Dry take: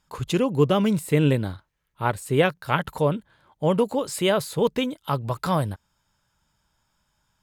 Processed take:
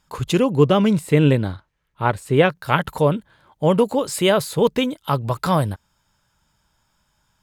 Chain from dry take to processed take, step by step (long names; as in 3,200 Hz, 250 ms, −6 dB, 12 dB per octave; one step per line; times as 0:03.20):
0:00.51–0:02.54: high-shelf EQ 11,000 Hz → 6,100 Hz −11 dB
level +4.5 dB